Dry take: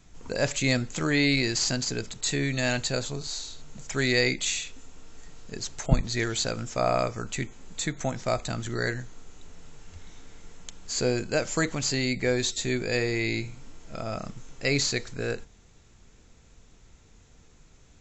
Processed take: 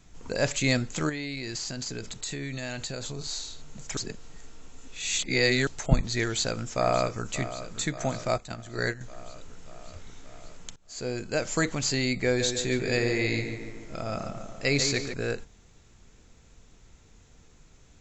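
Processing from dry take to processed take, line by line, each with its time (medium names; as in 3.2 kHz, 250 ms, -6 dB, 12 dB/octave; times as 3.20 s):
1.09–3.19 s: compression 10:1, threshold -30 dBFS
3.97–5.67 s: reverse
6.23–7.29 s: echo throw 580 ms, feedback 70%, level -13 dB
8.28–9.01 s: gate -30 dBFS, range -10 dB
10.76–11.54 s: fade in, from -23.5 dB
12.26–15.14 s: tape echo 144 ms, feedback 66%, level -5.5 dB, low-pass 2.3 kHz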